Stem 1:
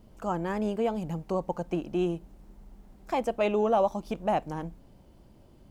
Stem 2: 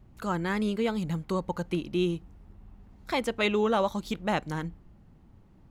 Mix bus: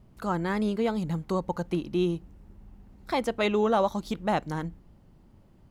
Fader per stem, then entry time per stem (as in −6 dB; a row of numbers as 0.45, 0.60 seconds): −8.0, −1.5 decibels; 0.00, 0.00 seconds